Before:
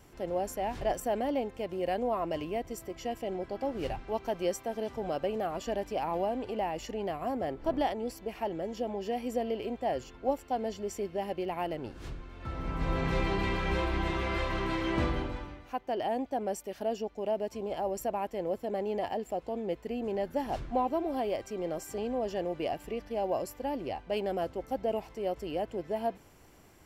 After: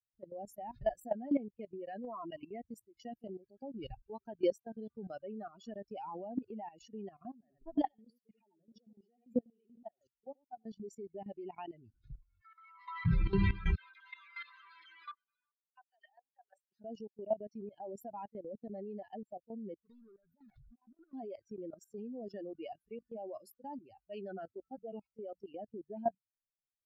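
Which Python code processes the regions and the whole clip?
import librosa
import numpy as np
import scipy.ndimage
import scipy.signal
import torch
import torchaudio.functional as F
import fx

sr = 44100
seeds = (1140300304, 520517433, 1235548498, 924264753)

y = fx.chain(x, sr, fx.echo_single(ms=87, db=-4.5),
    fx.level_steps(step_db=14), at=(7.31, 10.66))
y = fx.chain(y, sr, fx.highpass(hz=780.0, slope=12),
    fx.comb(ms=1.0, depth=0.78), at=(12.41, 13.06))
y = fx.chain(y, sr, fx.highpass(hz=810.0, slope=12),
    fx.level_steps(step_db=13),
    fx.dispersion(late='lows', ms=45.0, hz=2200.0), at=(13.75, 16.72))
y = fx.chain(y, sr, fx.over_compress(threshold_db=-35.0, ratio=-0.5),
    fx.clip_hard(threshold_db=-39.5), at=(19.85, 21.14))
y = fx.chain(y, sr, fx.peak_eq(hz=1300.0, db=4.5, octaves=0.33),
    fx.hum_notches(base_hz=60, count=4), at=(22.29, 25.64))
y = fx.bin_expand(y, sr, power=3.0)
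y = fx.bass_treble(y, sr, bass_db=13, treble_db=-9)
y = fx.level_steps(y, sr, step_db=16)
y = F.gain(torch.from_numpy(y), 5.0).numpy()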